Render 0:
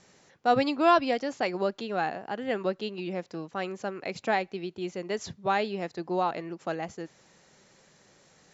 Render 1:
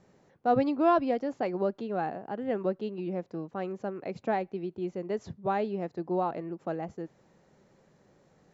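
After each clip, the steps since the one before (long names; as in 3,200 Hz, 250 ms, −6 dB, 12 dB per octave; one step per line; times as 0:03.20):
tilt shelving filter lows +9 dB, about 1,500 Hz
level −7.5 dB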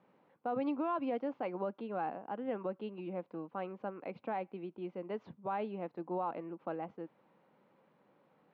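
loudspeaker in its box 260–3,000 Hz, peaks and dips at 390 Hz −8 dB, 660 Hz −5 dB, 1,000 Hz +3 dB, 1,800 Hz −7 dB
brickwall limiter −25.5 dBFS, peak gain reduction 9 dB
level −1.5 dB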